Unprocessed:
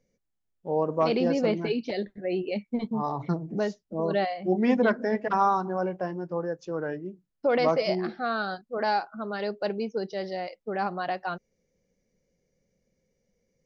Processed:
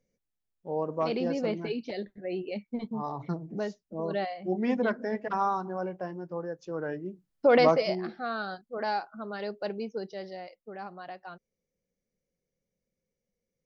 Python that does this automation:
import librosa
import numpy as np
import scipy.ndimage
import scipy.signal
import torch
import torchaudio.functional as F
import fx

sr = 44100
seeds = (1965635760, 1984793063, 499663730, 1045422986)

y = fx.gain(x, sr, db=fx.line((6.53, -5.0), (7.59, 4.0), (7.97, -4.5), (9.94, -4.5), (10.83, -12.0)))